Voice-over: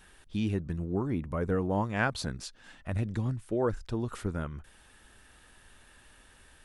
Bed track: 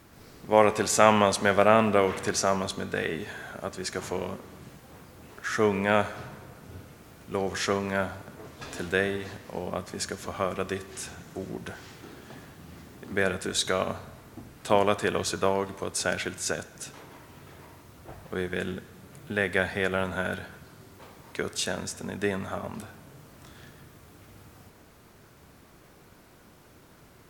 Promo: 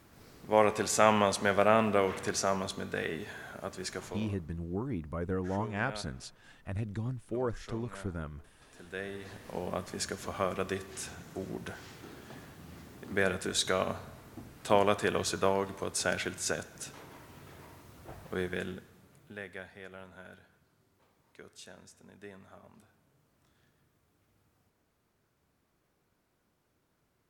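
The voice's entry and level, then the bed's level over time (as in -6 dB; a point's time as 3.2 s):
3.80 s, -4.5 dB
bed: 3.9 s -5 dB
4.63 s -20.5 dB
8.68 s -20.5 dB
9.49 s -3 dB
18.44 s -3 dB
19.72 s -20.5 dB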